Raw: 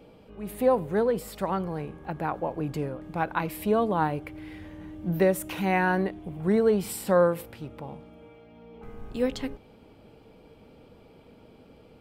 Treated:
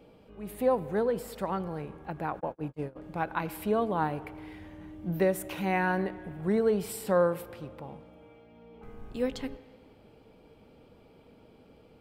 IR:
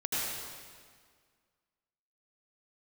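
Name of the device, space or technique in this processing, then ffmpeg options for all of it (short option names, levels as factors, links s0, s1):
filtered reverb send: -filter_complex "[0:a]asplit=2[s0][s1];[s1]highpass=220,lowpass=3600[s2];[1:a]atrim=start_sample=2205[s3];[s2][s3]afir=irnorm=-1:irlink=0,volume=0.0708[s4];[s0][s4]amix=inputs=2:normalize=0,asplit=3[s5][s6][s7];[s5]afade=t=out:st=2.39:d=0.02[s8];[s6]agate=range=0.00794:threshold=0.0355:ratio=16:detection=peak,afade=t=in:st=2.39:d=0.02,afade=t=out:st=2.95:d=0.02[s9];[s7]afade=t=in:st=2.95:d=0.02[s10];[s8][s9][s10]amix=inputs=3:normalize=0,volume=0.631"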